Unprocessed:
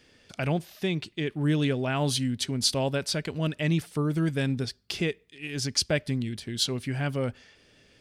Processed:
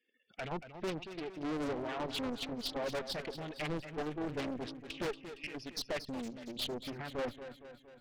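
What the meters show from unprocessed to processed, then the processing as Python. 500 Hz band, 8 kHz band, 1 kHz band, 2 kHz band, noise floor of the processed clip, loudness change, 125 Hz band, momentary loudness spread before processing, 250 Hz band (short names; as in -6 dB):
-7.5 dB, -18.0 dB, -4.5 dB, -9.5 dB, -64 dBFS, -11.0 dB, -19.0 dB, 7 LU, -11.0 dB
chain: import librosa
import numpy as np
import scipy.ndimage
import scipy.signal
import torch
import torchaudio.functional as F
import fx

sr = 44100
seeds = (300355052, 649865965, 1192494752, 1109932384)

y = fx.bin_expand(x, sr, power=1.5)
y = scipy.signal.sosfilt(scipy.signal.butter(2, 300.0, 'highpass', fs=sr, output='sos'), y)
y = fx.spec_gate(y, sr, threshold_db=-15, keep='strong')
y = scipy.signal.sosfilt(scipy.signal.butter(4, 4000.0, 'lowpass', fs=sr, output='sos'), y)
y = fx.low_shelf(y, sr, hz=500.0, db=5.0)
y = fx.level_steps(y, sr, step_db=10)
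y = fx.tremolo_shape(y, sr, shape='saw_down', hz=1.4, depth_pct=65)
y = fx.tube_stage(y, sr, drive_db=43.0, bias=0.55)
y = fx.echo_feedback(y, sr, ms=231, feedback_pct=56, wet_db=-11)
y = fx.doppler_dist(y, sr, depth_ms=0.99)
y = F.gain(torch.from_numpy(y), 9.5).numpy()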